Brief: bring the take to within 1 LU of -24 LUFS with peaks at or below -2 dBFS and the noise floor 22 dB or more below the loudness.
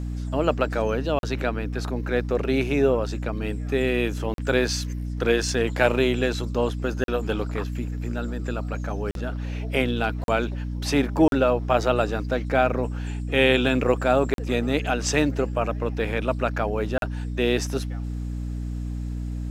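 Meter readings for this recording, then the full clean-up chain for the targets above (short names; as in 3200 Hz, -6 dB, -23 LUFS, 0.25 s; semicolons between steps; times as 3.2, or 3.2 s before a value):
dropouts 8; longest dropout 42 ms; hum 60 Hz; harmonics up to 300 Hz; hum level -27 dBFS; loudness -25.0 LUFS; peak -4.0 dBFS; loudness target -24.0 LUFS
-> interpolate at 1.19/4.34/7.04/9.11/10.24/11.28/14.34/16.98, 42 ms; notches 60/120/180/240/300 Hz; gain +1 dB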